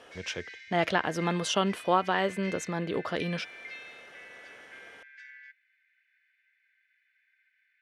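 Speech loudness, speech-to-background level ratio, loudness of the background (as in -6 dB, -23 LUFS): -30.0 LUFS, 15.0 dB, -45.0 LUFS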